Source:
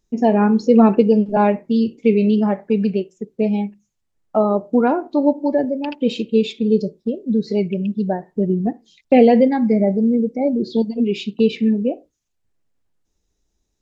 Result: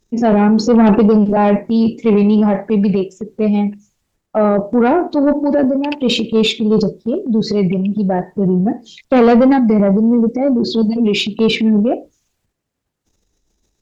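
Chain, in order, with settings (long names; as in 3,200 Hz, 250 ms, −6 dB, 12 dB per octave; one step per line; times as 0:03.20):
transient designer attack −3 dB, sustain +9 dB
harmonic generator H 5 −16 dB, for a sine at −1 dBFS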